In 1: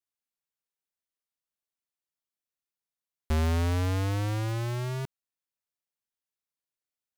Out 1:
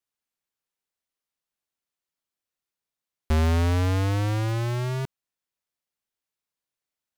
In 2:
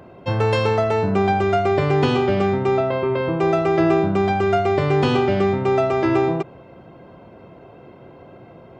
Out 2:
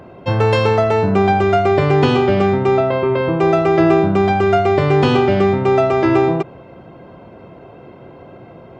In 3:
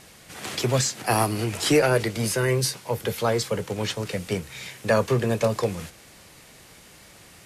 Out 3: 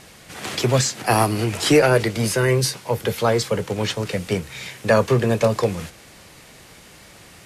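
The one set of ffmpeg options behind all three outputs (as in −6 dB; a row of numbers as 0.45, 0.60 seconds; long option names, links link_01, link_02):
-af "highshelf=frequency=6800:gain=-4,volume=4.5dB"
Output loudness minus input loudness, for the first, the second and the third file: +4.5, +4.5, +4.0 LU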